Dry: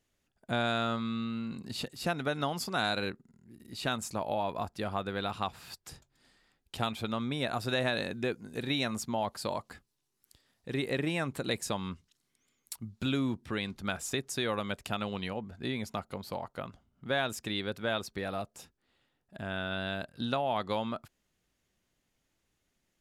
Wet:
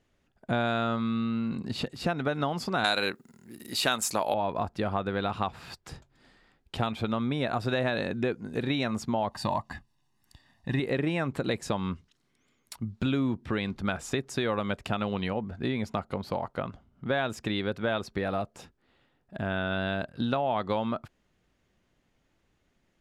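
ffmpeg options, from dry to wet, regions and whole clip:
ffmpeg -i in.wav -filter_complex "[0:a]asettb=1/sr,asplit=3[link_01][link_02][link_03];[link_01]atrim=end=2.844[link_04];[link_02]atrim=start=2.84:end=4.34,asetpts=PTS-STARTPTS,afade=type=in:duration=0.004:curve=qsin,afade=type=out:start_time=1.496:duration=0.004:curve=qsin,acontrast=35,aemphasis=mode=production:type=riaa[link_05];[link_03]atrim=start=4.336[link_06];[link_04][link_05]acrossfade=duration=0.004:curve1=hsin:curve2=qsin[link_07];[link_07][link_06]acrossfade=duration=0.004:curve1=qsin:curve2=hsin,asettb=1/sr,asplit=3[link_08][link_09][link_10];[link_08]atrim=end=9.314[link_11];[link_09]atrim=start=9.31:end=10.8,asetpts=PTS-STARTPTS,afade=type=in:duration=0.004:curve=qsin,afade=type=out:start_time=1.486:duration=0.004:curve=qsin,aecho=1:1:1.1:0.77,atrim=end_sample=65709,acrusher=bits=8:mode=log:mix=0:aa=0.000001[link_12];[link_10]atrim=start=10.796[link_13];[link_11][link_12]acrossfade=duration=0.004:curve1=hsin:curve2=qsin[link_14];[link_14][link_13]acrossfade=duration=0.004:curve1=qsin:curve2=hsin,aemphasis=mode=reproduction:type=75kf,acompressor=threshold=-36dB:ratio=2,volume=8.5dB" out.wav

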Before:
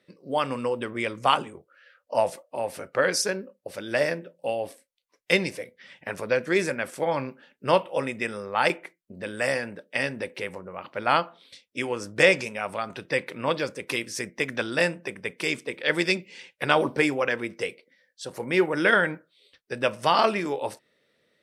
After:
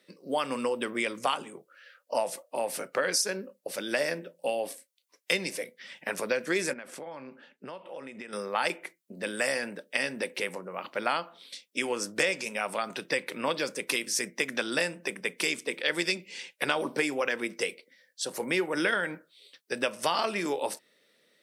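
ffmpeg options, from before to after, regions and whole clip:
ffmpeg -i in.wav -filter_complex "[0:a]asettb=1/sr,asplit=3[link_01][link_02][link_03];[link_01]atrim=end=6.734[link_04];[link_02]atrim=start=6.73:end=8.33,asetpts=PTS-STARTPTS,afade=type=in:duration=0.004:curve=qsin,afade=type=out:start_time=1.596:duration=0.004:curve=qsin,acompressor=threshold=-37dB:ratio=12:attack=3.2:release=140:knee=1:detection=peak,lowpass=frequency=2500:poles=1[link_05];[link_03]atrim=start=8.326[link_06];[link_04][link_05]acrossfade=duration=0.004:curve1=hsin:curve2=qsin[link_07];[link_07][link_06]acrossfade=duration=0.004:curve1=qsin:curve2=hsin,highpass=frequency=170:width=0.5412,highpass=frequency=170:width=1.3066,highshelf=frequency=3900:gain=10,acompressor=threshold=-25dB:ratio=4" out.wav

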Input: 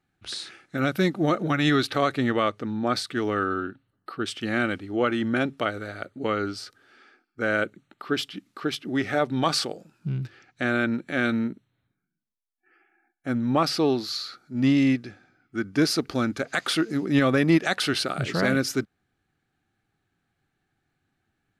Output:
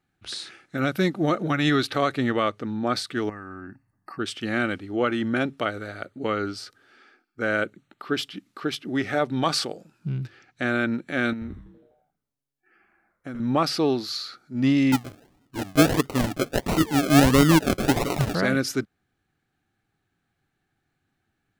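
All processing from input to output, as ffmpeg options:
ffmpeg -i in.wav -filter_complex "[0:a]asettb=1/sr,asplit=3[link_01][link_02][link_03];[link_01]atrim=end=3.294[link_04];[link_02]atrim=start=3.29:end=4.19,asetpts=PTS-STARTPTS,afade=type=in:duration=0.004:curve=qsin,afade=type=out:start_time=0.896:duration=0.004:curve=qsin,aecho=1:1:1.1:0.62,atrim=end_sample=39690,acompressor=threshold=-34dB:ratio=6:attack=3.2:release=140:knee=1:detection=peak,asuperstop=centerf=3400:order=8:qfactor=1.8[link_05];[link_03]atrim=start=4.186[link_06];[link_04][link_05]acrossfade=duration=0.004:curve1=hsin:curve2=qsin[link_07];[link_07][link_06]acrossfade=duration=0.004:curve1=qsin:curve2=hsin,asettb=1/sr,asplit=3[link_08][link_09][link_10];[link_08]atrim=end=11.334[link_11];[link_09]atrim=start=11.33:end=13.4,asetpts=PTS-STARTPTS,afade=type=in:duration=0.004:curve=qsin,afade=type=out:start_time=2.066:duration=0.004:curve=qsin,acompressor=threshold=-31dB:ratio=5:attack=3.2:release=140:knee=1:detection=peak,asplit=8[link_12][link_13][link_14][link_15][link_16][link_17][link_18][link_19];[link_13]adelay=82,afreqshift=-140,volume=-8dB[link_20];[link_14]adelay=164,afreqshift=-280,volume=-13dB[link_21];[link_15]adelay=246,afreqshift=-420,volume=-18.1dB[link_22];[link_16]adelay=328,afreqshift=-560,volume=-23.1dB[link_23];[link_17]adelay=410,afreqshift=-700,volume=-28.1dB[link_24];[link_18]adelay=492,afreqshift=-840,volume=-33.2dB[link_25];[link_19]adelay=574,afreqshift=-980,volume=-38.2dB[link_26];[link_12][link_20][link_21][link_22][link_23][link_24][link_25][link_26]amix=inputs=8:normalize=0,atrim=end_sample=91287[link_27];[link_10]atrim=start=13.396[link_28];[link_11][link_27]acrossfade=duration=0.004:curve1=hsin:curve2=qsin[link_29];[link_29][link_28]acrossfade=duration=0.004:curve1=qsin:curve2=hsin,asettb=1/sr,asplit=3[link_30][link_31][link_32];[link_30]atrim=end=14.924[link_33];[link_31]atrim=start=14.92:end=18.35,asetpts=PTS-STARTPTS,afade=type=in:duration=0.004:curve=qsin,afade=type=out:start_time=3.426:duration=0.004:curve=qsin,aecho=1:1:7:0.85,atrim=end_sample=151263,acrusher=samples=37:mix=1:aa=0.000001:lfo=1:lforange=22.2:lforate=1.5[link_34];[link_32]atrim=start=18.346[link_35];[link_33][link_34]acrossfade=duration=0.004:curve1=hsin:curve2=qsin[link_36];[link_36][link_35]acrossfade=duration=0.004:curve1=qsin:curve2=hsin" out.wav

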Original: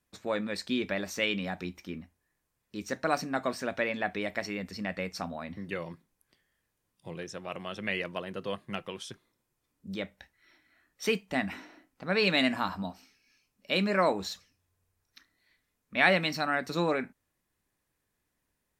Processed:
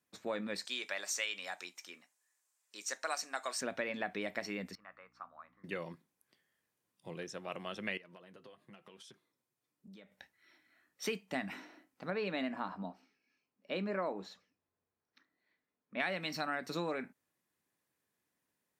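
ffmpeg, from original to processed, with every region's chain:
ffmpeg -i in.wav -filter_complex "[0:a]asettb=1/sr,asplit=3[link_01][link_02][link_03];[link_01]atrim=end=0.654[link_04];[link_02]atrim=start=0.65:end=3.61,asetpts=PTS-STARTPTS,afade=type=in:duration=0.004:curve=qsin,afade=type=out:start_time=2.956:duration=0.004:curve=qsin,highpass=760,equalizer=frequency=7400:width_type=o:width=1:gain=13[link_05];[link_03]atrim=start=3.606[link_06];[link_04][link_05]acrossfade=duration=0.004:curve1=hsin:curve2=qsin[link_07];[link_07][link_06]acrossfade=duration=0.004:curve1=qsin:curve2=hsin,asettb=1/sr,asplit=3[link_08][link_09][link_10];[link_08]atrim=end=4.754[link_11];[link_09]atrim=start=4.75:end=5.64,asetpts=PTS-STARTPTS,afade=type=in:duration=0.004:curve=qsin,afade=type=out:start_time=0.886:duration=0.004:curve=qsin,bandpass=frequency=1200:width_type=q:width=5.7,aeval=exprs='val(0)+0.000501*(sin(2*PI*60*n/s)+sin(2*PI*2*60*n/s)/2+sin(2*PI*3*60*n/s)/3+sin(2*PI*4*60*n/s)/4+sin(2*PI*5*60*n/s)/5)':channel_layout=same[link_12];[link_10]atrim=start=5.636[link_13];[link_11][link_12]acrossfade=duration=0.004:curve1=hsin:curve2=qsin[link_14];[link_14][link_13]acrossfade=duration=0.004:curve1=qsin:curve2=hsin,asettb=1/sr,asplit=3[link_15][link_16][link_17];[link_15]atrim=end=7.974[link_18];[link_16]atrim=start=7.97:end=10.12,asetpts=PTS-STARTPTS,afade=type=in:duration=0.004:curve=qsin,afade=type=out:start_time=2.146:duration=0.004:curve=qsin,acompressor=threshold=-43dB:ratio=16:attack=3.2:release=140:knee=1:detection=peak,flanger=delay=4.2:depth=3.7:regen=-48:speed=1:shape=triangular[link_19];[link_17]atrim=start=10.116[link_20];[link_18][link_19]acrossfade=duration=0.004:curve1=hsin:curve2=qsin[link_21];[link_21][link_20]acrossfade=duration=0.004:curve1=qsin:curve2=hsin,asettb=1/sr,asplit=3[link_22][link_23][link_24];[link_22]atrim=end=12.104[link_25];[link_23]atrim=start=12.1:end=16,asetpts=PTS-STARTPTS,afade=type=in:duration=0.004:curve=qsin,afade=type=out:start_time=3.896:duration=0.004:curve=qsin,lowpass=frequency=1100:poles=1,equalizer=frequency=100:width=1.1:gain=-8[link_26];[link_24]atrim=start=15.996[link_27];[link_25][link_26]acrossfade=duration=0.004:curve1=hsin:curve2=qsin[link_28];[link_28][link_27]acrossfade=duration=0.004:curve1=qsin:curve2=hsin,acompressor=threshold=-29dB:ratio=5,highpass=150,volume=-3.5dB" out.wav

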